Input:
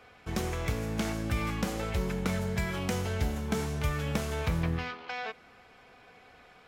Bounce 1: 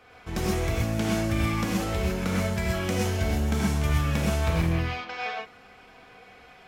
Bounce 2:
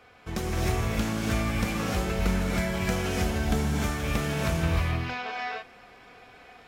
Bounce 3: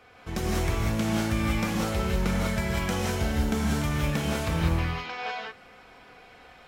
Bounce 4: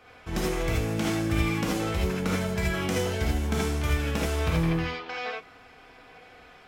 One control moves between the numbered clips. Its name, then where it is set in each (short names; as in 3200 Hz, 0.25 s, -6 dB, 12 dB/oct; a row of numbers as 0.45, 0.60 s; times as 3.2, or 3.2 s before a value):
non-linear reverb, gate: 0.15, 0.33, 0.22, 0.1 s